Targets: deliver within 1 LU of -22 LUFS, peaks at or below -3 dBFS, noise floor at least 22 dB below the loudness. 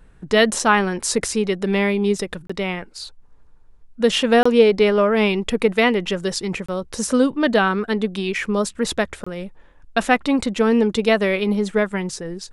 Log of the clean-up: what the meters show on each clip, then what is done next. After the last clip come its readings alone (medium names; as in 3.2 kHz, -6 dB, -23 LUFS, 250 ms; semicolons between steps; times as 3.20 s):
dropouts 4; longest dropout 25 ms; loudness -19.5 LUFS; peak level -2.0 dBFS; loudness target -22.0 LUFS
-> interpolate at 2.47/4.43/6.66/9.24 s, 25 ms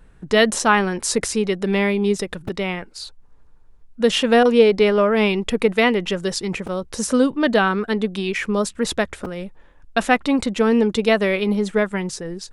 dropouts 0; loudness -19.5 LUFS; peak level -2.0 dBFS; loudness target -22.0 LUFS
-> trim -2.5 dB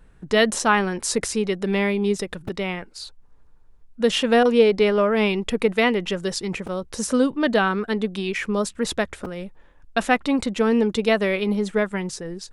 loudness -22.0 LUFS; peak level -4.5 dBFS; noise floor -51 dBFS